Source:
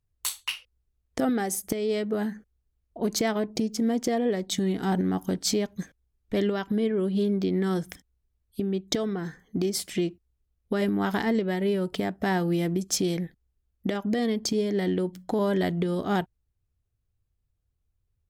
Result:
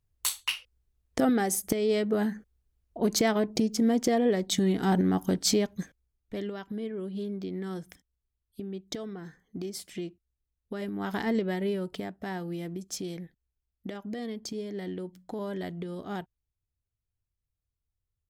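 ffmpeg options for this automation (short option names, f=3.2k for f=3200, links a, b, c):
-af "volume=8.5dB,afade=t=out:st=5.56:d=0.81:silence=0.298538,afade=t=in:st=10.91:d=0.48:silence=0.421697,afade=t=out:st=11.39:d=0.79:silence=0.398107"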